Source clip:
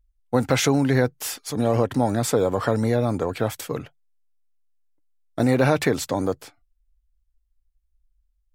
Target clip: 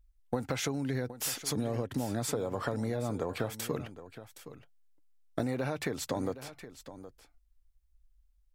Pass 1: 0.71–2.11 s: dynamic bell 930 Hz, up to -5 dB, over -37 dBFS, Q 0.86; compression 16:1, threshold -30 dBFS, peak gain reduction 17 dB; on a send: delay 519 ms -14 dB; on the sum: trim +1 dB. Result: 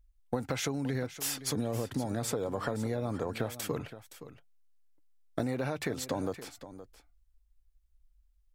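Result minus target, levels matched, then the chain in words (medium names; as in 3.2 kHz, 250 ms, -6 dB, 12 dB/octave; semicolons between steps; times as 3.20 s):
echo 249 ms early
0.71–2.11 s: dynamic bell 930 Hz, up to -5 dB, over -37 dBFS, Q 0.86; compression 16:1, threshold -30 dBFS, peak gain reduction 17 dB; on a send: delay 768 ms -14 dB; on the sum: trim +1 dB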